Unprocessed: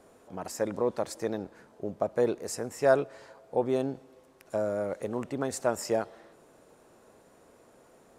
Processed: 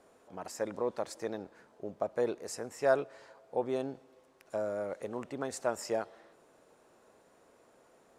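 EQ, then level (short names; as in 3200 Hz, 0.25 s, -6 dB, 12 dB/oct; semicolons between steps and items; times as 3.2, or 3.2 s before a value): low shelf 300 Hz -7 dB; high shelf 11000 Hz -8.5 dB; -3.0 dB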